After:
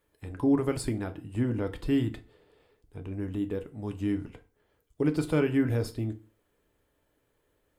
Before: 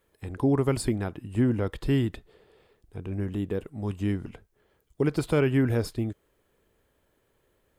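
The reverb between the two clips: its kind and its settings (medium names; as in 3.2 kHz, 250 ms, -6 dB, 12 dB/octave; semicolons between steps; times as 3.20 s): FDN reverb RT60 0.37 s, low-frequency decay 1.05×, high-frequency decay 0.8×, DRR 7 dB; trim -4 dB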